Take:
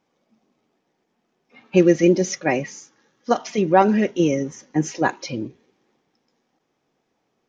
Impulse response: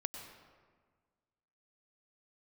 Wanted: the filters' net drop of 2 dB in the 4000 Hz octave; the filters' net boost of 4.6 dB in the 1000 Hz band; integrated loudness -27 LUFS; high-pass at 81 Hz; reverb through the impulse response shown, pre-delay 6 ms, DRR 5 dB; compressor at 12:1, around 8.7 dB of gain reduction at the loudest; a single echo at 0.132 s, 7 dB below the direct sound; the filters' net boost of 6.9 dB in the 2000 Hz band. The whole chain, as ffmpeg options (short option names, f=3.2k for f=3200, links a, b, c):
-filter_complex "[0:a]highpass=81,equalizer=f=1k:t=o:g=5,equalizer=f=2k:t=o:g=8.5,equalizer=f=4k:t=o:g=-7.5,acompressor=threshold=-15dB:ratio=12,aecho=1:1:132:0.447,asplit=2[a][b];[1:a]atrim=start_sample=2205,adelay=6[c];[b][c]afir=irnorm=-1:irlink=0,volume=-4.5dB[d];[a][d]amix=inputs=2:normalize=0,volume=-6dB"